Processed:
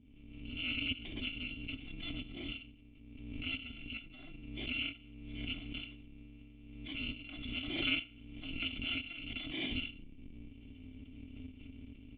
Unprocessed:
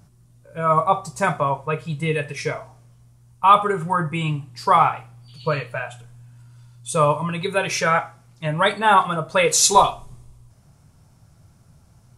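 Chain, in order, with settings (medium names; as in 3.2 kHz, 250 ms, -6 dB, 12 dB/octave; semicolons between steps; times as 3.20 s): bit-reversed sample order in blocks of 256 samples; level rider gain up to 16 dB; cascade formant filter i; swell ahead of each attack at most 39 dB/s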